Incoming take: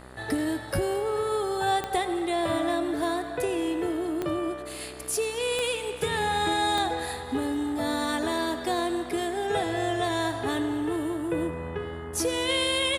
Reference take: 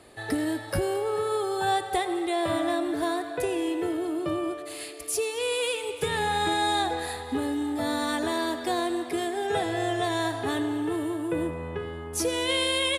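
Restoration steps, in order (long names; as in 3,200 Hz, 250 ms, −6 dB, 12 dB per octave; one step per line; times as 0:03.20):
click removal
hum removal 63.6 Hz, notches 31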